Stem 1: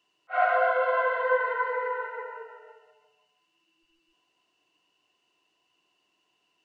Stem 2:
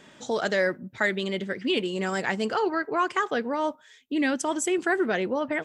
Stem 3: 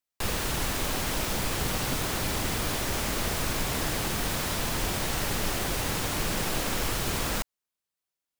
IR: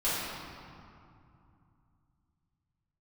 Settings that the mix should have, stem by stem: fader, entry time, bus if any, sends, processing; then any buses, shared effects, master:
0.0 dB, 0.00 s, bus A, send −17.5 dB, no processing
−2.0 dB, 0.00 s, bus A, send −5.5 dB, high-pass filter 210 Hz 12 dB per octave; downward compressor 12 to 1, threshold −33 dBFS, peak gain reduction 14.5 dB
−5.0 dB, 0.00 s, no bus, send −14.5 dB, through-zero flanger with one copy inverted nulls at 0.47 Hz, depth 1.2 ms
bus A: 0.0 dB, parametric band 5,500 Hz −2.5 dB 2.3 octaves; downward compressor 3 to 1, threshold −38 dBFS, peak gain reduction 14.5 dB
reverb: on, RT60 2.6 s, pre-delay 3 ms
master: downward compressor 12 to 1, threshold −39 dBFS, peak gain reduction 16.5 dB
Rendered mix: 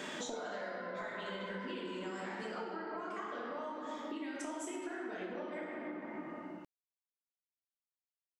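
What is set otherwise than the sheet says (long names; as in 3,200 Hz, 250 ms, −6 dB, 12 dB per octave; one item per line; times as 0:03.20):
stem 2 −2.0 dB → +6.5 dB
stem 3: muted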